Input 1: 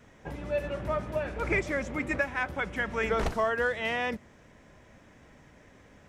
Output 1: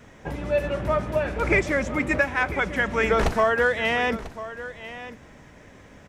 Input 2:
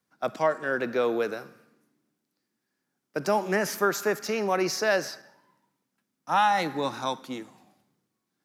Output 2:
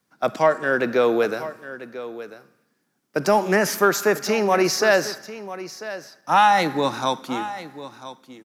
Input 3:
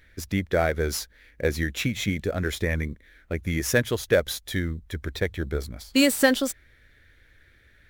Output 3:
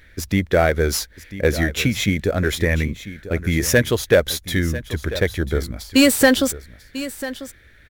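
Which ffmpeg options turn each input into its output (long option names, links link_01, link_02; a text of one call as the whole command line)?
ffmpeg -i in.wav -af "acontrast=82,aecho=1:1:994:0.188" out.wav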